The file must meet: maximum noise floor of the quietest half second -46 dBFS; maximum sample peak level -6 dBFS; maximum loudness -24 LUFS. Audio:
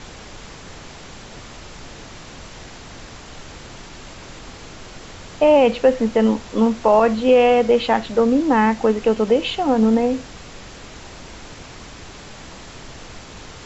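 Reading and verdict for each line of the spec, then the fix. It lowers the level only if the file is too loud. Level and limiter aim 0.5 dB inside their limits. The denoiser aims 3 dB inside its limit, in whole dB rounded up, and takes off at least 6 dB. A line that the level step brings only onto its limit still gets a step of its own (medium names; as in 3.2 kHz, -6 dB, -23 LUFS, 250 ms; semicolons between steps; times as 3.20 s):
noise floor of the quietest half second -38 dBFS: fail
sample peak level -4.0 dBFS: fail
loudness -17.0 LUFS: fail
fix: noise reduction 6 dB, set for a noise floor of -38 dBFS; trim -7.5 dB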